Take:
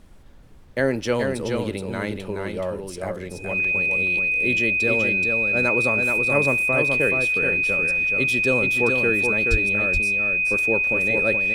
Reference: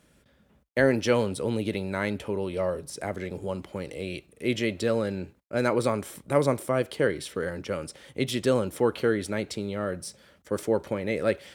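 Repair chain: band-stop 2.5 kHz, Q 30; 9.50–9.62 s: high-pass 140 Hz 24 dB/octave; noise print and reduce 26 dB; inverse comb 426 ms -4.5 dB

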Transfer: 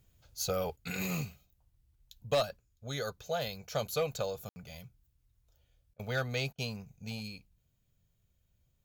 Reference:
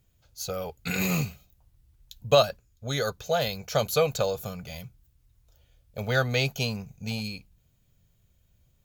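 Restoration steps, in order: clip repair -22.5 dBFS; room tone fill 4.49–4.56 s; interpolate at 5.94/6.53 s, 52 ms; trim 0 dB, from 0.76 s +8.5 dB

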